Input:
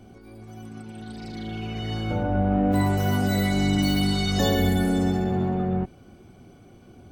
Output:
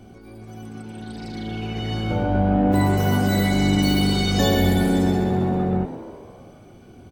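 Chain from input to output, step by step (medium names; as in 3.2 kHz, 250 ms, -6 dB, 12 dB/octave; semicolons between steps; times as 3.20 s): frequency-shifting echo 132 ms, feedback 62%, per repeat +71 Hz, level -14 dB; trim +3 dB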